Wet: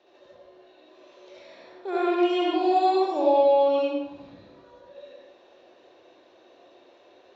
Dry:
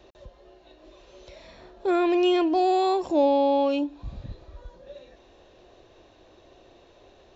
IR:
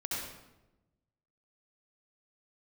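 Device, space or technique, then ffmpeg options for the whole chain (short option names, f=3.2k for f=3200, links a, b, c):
supermarket ceiling speaker: -filter_complex "[0:a]highpass=330,lowpass=5.2k[a];[1:a]atrim=start_sample=2205[b];[a][b]afir=irnorm=-1:irlink=0,volume=-3dB"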